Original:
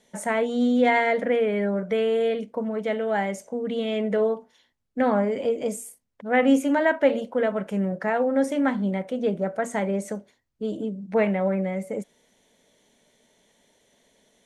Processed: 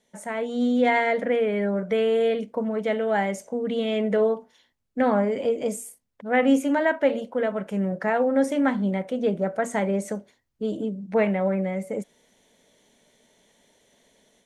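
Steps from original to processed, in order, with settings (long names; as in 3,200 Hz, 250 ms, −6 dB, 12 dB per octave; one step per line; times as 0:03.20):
automatic gain control gain up to 8.5 dB
level −7 dB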